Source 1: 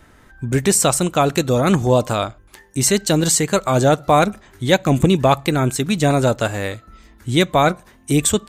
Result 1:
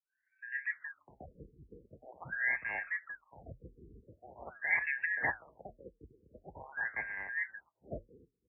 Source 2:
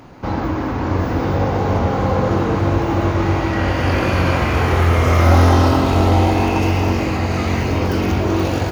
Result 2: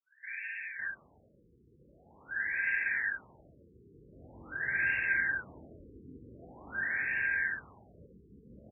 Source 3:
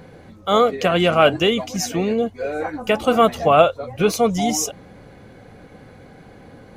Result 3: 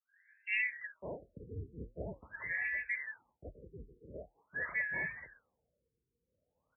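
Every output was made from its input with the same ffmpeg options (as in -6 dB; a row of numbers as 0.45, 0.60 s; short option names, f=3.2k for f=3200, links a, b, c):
-filter_complex "[0:a]afftfilt=real='real(if(lt(b,272),68*(eq(floor(b/68),0)*2+eq(floor(b/68),1)*0+eq(floor(b/68),2)*3+eq(floor(b/68),3)*1)+mod(b,68),b),0)':imag='imag(if(lt(b,272),68*(eq(floor(b/68),0)*2+eq(floor(b/68),1)*0+eq(floor(b/68),2)*3+eq(floor(b/68),3)*1)+mod(b,68),b),0)':win_size=2048:overlap=0.75,agate=range=-33dB:threshold=-40dB:ratio=3:detection=peak,lowshelf=f=120:g=2.5,flanger=delay=4.8:depth=7.1:regen=-78:speed=1.3:shape=triangular,afreqshift=39,acrossover=split=320|1600|5500[a][b][c][d];[d]asoftclip=type=hard:threshold=-21dB[e];[a][b][c][e]amix=inputs=4:normalize=0,acrossover=split=2000[f][g];[f]adelay=550[h];[h][g]amix=inputs=2:normalize=0,afftfilt=real='re*lt(b*sr/1024,470*pow(2800/470,0.5+0.5*sin(2*PI*0.45*pts/sr)))':imag='im*lt(b*sr/1024,470*pow(2800/470,0.5+0.5*sin(2*PI*0.45*pts/sr)))':win_size=1024:overlap=0.75,volume=-8dB"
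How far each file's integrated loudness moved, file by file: -18.5, -15.5, -19.5 LU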